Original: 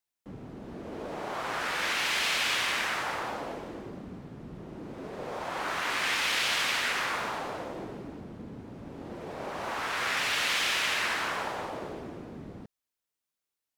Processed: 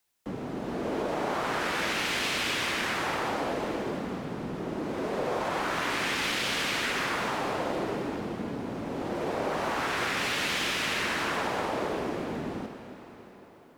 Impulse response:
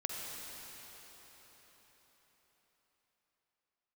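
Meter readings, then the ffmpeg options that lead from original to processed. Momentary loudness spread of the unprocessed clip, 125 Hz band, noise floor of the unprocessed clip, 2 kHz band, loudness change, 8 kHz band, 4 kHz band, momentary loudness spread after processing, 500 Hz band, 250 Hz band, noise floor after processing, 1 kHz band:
18 LU, +6.0 dB, under -85 dBFS, -0.5 dB, -0.5 dB, -1.0 dB, -1.0 dB, 8 LU, +7.0 dB, +8.0 dB, -50 dBFS, +2.5 dB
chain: -filter_complex "[0:a]acrossover=split=170|400[s0][s1][s2];[s0]acompressor=threshold=0.00112:ratio=4[s3];[s1]acompressor=threshold=0.00447:ratio=4[s4];[s2]acompressor=threshold=0.00794:ratio=4[s5];[s3][s4][s5]amix=inputs=3:normalize=0,asplit=2[s6][s7];[1:a]atrim=start_sample=2205[s8];[s7][s8]afir=irnorm=-1:irlink=0,volume=0.531[s9];[s6][s9]amix=inputs=2:normalize=0,volume=2.51"

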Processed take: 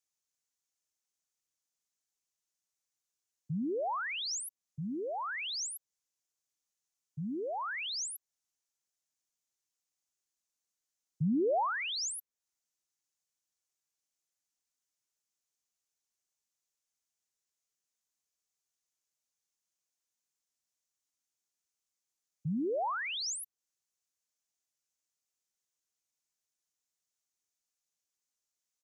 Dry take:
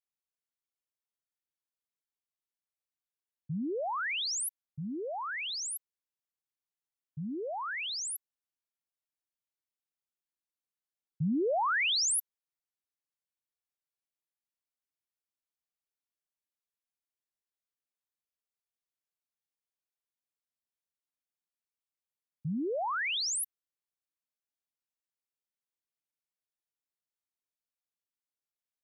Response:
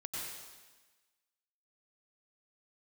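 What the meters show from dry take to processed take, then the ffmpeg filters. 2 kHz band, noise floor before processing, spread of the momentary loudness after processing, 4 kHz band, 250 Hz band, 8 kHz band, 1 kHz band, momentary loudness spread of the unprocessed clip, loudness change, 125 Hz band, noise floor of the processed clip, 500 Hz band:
-4.5 dB, under -85 dBFS, 12 LU, -4.5 dB, 0.0 dB, -5.0 dB, -1.0 dB, 13 LU, -3.0 dB, 0.0 dB, under -85 dBFS, 0.0 dB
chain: -filter_complex "[0:a]equalizer=f=6500:w=1.4:g=13.5,acrossover=split=170|920[s0][s1][s2];[s1]aecho=1:1:106:0.1[s3];[s2]acompressor=threshold=0.0141:ratio=6[s4];[s0][s3][s4]amix=inputs=3:normalize=0"

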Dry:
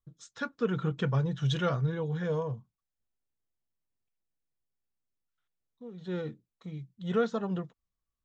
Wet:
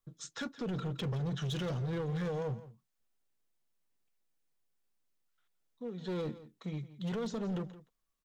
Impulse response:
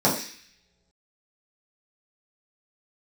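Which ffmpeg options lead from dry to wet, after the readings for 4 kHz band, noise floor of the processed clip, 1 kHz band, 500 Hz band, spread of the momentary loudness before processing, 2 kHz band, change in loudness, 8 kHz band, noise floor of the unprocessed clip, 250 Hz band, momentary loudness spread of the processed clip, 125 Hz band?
-2.5 dB, -82 dBFS, -7.5 dB, -6.0 dB, 15 LU, -7.0 dB, -6.0 dB, no reading, under -85 dBFS, -3.5 dB, 10 LU, -5.0 dB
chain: -filter_complex "[0:a]equalizer=f=64:w=0.8:g=-14,acrossover=split=460|3000[s0][s1][s2];[s1]acompressor=threshold=0.00447:ratio=6[s3];[s0][s3][s2]amix=inputs=3:normalize=0,alimiter=level_in=2.51:limit=0.0631:level=0:latency=1:release=26,volume=0.398,asoftclip=type=hard:threshold=0.0126,aecho=1:1:169:0.158,volume=1.88"

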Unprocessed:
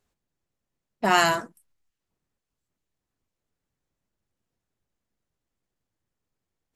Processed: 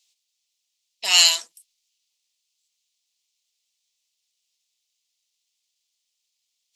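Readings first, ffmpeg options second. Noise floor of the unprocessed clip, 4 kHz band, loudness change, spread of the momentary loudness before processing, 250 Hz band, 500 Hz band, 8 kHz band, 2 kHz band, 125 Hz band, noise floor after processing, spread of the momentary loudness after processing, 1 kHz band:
-85 dBFS, +14.0 dB, +6.5 dB, 9 LU, under -25 dB, -14.0 dB, +14.0 dB, -0.5 dB, under -30 dB, -78 dBFS, 14 LU, -12.0 dB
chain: -filter_complex "[0:a]aexciter=amount=15.3:drive=9:freq=2500,acrossover=split=490 6800:gain=0.0708 1 0.2[s0][s1][s2];[s0][s1][s2]amix=inputs=3:normalize=0,volume=0.282"

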